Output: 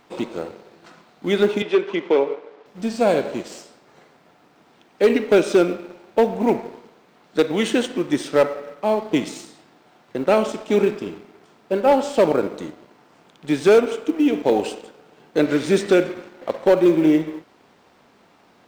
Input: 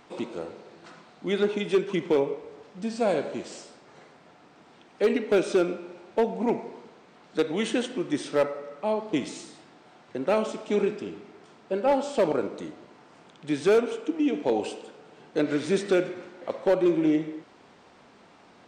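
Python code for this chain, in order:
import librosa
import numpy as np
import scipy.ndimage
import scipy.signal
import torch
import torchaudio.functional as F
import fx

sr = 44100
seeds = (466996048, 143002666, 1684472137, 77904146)

y = fx.law_mismatch(x, sr, coded='A')
y = fx.bandpass_edges(y, sr, low_hz=340.0, high_hz=3700.0, at=(1.62, 2.66))
y = F.gain(torch.from_numpy(y), 7.5).numpy()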